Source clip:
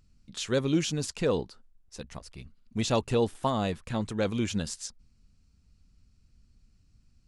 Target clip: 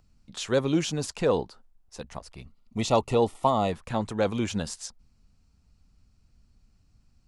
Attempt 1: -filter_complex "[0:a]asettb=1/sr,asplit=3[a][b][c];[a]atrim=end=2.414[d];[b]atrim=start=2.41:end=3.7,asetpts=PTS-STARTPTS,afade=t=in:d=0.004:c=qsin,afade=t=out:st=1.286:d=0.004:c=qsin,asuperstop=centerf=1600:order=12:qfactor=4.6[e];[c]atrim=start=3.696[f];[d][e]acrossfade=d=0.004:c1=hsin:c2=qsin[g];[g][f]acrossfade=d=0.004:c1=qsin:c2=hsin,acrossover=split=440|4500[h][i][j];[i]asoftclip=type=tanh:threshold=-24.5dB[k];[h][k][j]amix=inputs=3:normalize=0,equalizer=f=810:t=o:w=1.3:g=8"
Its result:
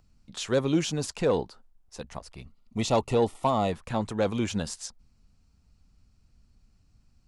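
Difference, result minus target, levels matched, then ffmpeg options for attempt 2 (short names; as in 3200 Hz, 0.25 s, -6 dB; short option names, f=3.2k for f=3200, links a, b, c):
soft clip: distortion +15 dB
-filter_complex "[0:a]asettb=1/sr,asplit=3[a][b][c];[a]atrim=end=2.414[d];[b]atrim=start=2.41:end=3.7,asetpts=PTS-STARTPTS,afade=t=in:d=0.004:c=qsin,afade=t=out:st=1.286:d=0.004:c=qsin,asuperstop=centerf=1600:order=12:qfactor=4.6[e];[c]atrim=start=3.696[f];[d][e]acrossfade=d=0.004:c1=hsin:c2=qsin[g];[g][f]acrossfade=d=0.004:c1=qsin:c2=hsin,acrossover=split=440|4500[h][i][j];[i]asoftclip=type=tanh:threshold=-14.5dB[k];[h][k][j]amix=inputs=3:normalize=0,equalizer=f=810:t=o:w=1.3:g=8"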